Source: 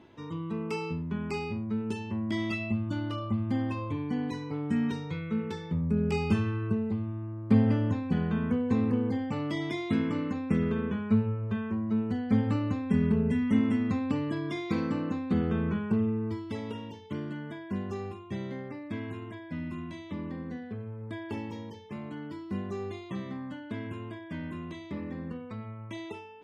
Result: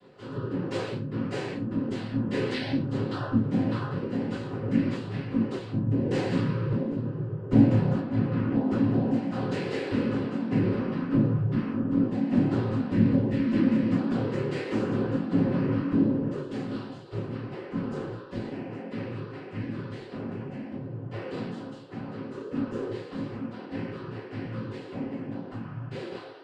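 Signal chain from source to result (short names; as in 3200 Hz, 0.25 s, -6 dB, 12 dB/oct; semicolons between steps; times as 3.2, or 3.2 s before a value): noise vocoder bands 8; 7.99–8.69 LPF 3000 Hz 6 dB/oct; reverb, pre-delay 3 ms, DRR -8 dB; gain -8.5 dB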